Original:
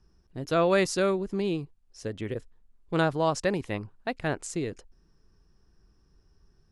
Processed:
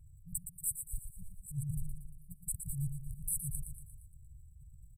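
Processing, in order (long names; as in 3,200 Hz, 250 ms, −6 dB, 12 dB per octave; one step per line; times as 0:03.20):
compressor whose output falls as the input rises −33 dBFS, ratio −1
transient designer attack −10 dB, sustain +9 dB
on a send: repeating echo 157 ms, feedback 53%, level −8 dB
on the sum: wrong playback speed 33 rpm record played at 45 rpm
linear-phase brick-wall band-stop 160–7,700 Hz
level +1.5 dB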